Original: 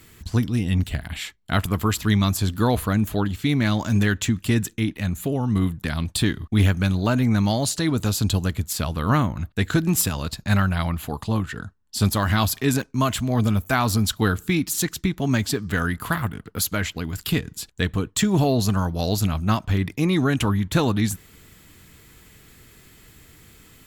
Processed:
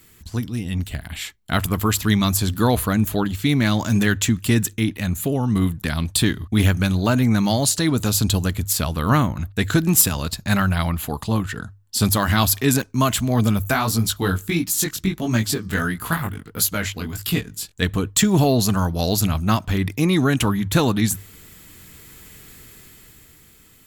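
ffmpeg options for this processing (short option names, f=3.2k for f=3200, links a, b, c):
-filter_complex "[0:a]asplit=3[a][b][c];[a]afade=t=out:st=13.72:d=0.02[d];[b]flanger=delay=17:depth=4.3:speed=1.5,afade=t=in:st=13.72:d=0.02,afade=t=out:st=17.81:d=0.02[e];[c]afade=t=in:st=17.81:d=0.02[f];[d][e][f]amix=inputs=3:normalize=0,dynaudnorm=f=140:g=17:m=9.5dB,highshelf=f=7k:g=7,bandreject=f=50:t=h:w=6,bandreject=f=100:t=h:w=6,volume=-4dB"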